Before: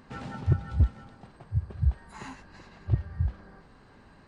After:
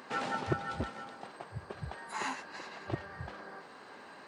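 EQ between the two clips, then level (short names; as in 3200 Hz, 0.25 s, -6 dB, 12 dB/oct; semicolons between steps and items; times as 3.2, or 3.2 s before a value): HPF 410 Hz 12 dB/oct; +8.0 dB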